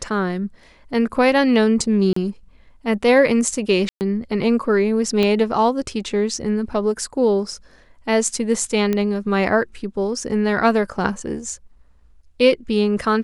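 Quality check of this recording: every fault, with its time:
2.13–2.16 s: dropout 34 ms
3.89–4.01 s: dropout 119 ms
5.23 s: pop -8 dBFS
8.93 s: pop -9 dBFS

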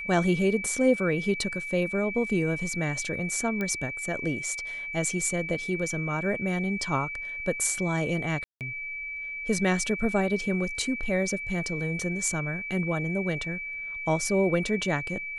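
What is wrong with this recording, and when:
whine 2.3 kHz -33 dBFS
3.61 s: pop -18 dBFS
8.44–8.61 s: dropout 168 ms

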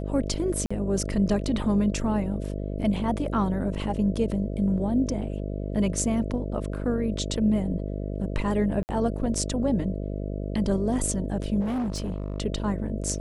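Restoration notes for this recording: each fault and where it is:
buzz 50 Hz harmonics 13 -31 dBFS
0.66–0.70 s: dropout 45 ms
8.83–8.89 s: dropout 59 ms
11.60–12.38 s: clipped -25 dBFS

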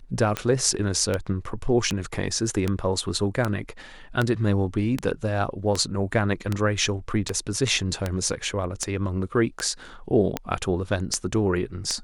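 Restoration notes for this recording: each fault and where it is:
tick 78 rpm -10 dBFS

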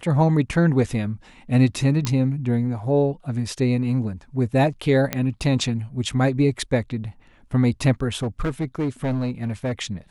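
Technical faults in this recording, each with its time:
2.05 s: pop -10 dBFS
5.13 s: pop -7 dBFS
8.15–9.72 s: clipped -19.5 dBFS

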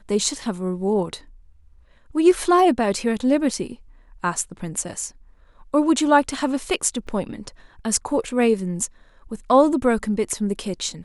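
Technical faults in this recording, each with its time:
7.07–7.08 s: dropout 5.6 ms

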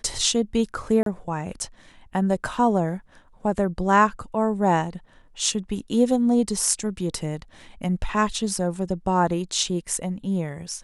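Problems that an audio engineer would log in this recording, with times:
1.03–1.06 s: dropout 32 ms

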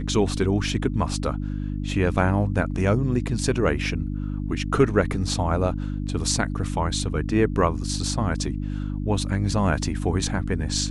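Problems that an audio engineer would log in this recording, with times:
hum 50 Hz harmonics 6 -28 dBFS

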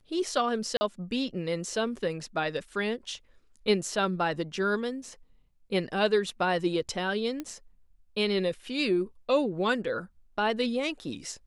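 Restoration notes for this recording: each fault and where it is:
0.77–0.81 s: dropout 40 ms
7.40 s: pop -21 dBFS

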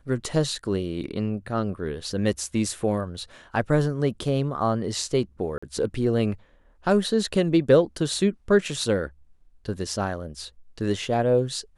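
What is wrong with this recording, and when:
5.58–5.62 s: dropout 45 ms

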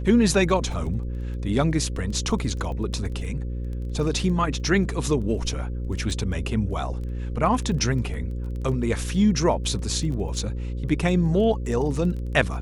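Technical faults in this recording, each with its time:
buzz 60 Hz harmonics 9 -29 dBFS
crackle 10 per s -32 dBFS
10.39 s: dropout 2.5 ms

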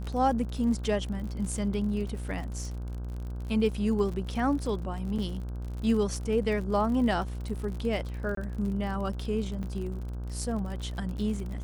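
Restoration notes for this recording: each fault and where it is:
buzz 60 Hz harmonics 27 -35 dBFS
crackle 51 per s -36 dBFS
5.18–5.19 s: dropout 6 ms
8.35–8.37 s: dropout 23 ms
9.63–9.64 s: dropout 6.4 ms

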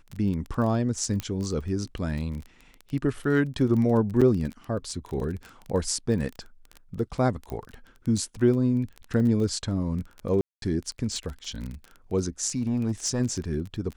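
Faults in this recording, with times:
crackle 19 per s -31 dBFS
1.20 s: pop -15 dBFS
4.21–4.22 s: dropout 6 ms
7.50 s: pop -22 dBFS
10.41–10.62 s: dropout 212 ms
12.57–13.21 s: clipped -20.5 dBFS

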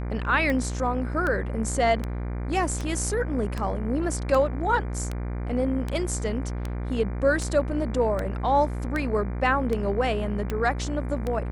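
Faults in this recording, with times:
buzz 60 Hz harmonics 40 -30 dBFS
tick 78 rpm -16 dBFS

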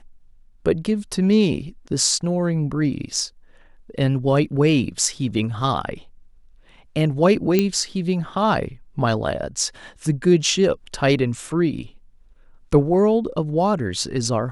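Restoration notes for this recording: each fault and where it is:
7.59 s: pop -5 dBFS

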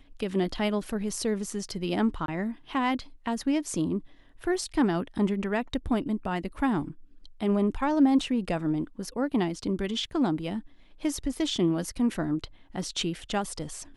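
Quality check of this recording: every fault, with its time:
2.26–2.28 s: dropout 22 ms

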